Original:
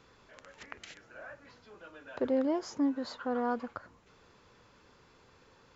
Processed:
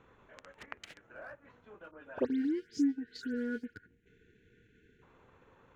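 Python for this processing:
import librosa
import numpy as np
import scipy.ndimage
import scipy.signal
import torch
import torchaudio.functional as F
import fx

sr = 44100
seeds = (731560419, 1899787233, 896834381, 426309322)

y = fx.wiener(x, sr, points=9)
y = fx.spec_erase(y, sr, start_s=2.25, length_s=2.77, low_hz=480.0, high_hz=1400.0)
y = fx.dispersion(y, sr, late='highs', ms=114.0, hz=2900.0, at=(1.91, 3.74))
y = fx.transient(y, sr, attack_db=1, sustain_db=-7)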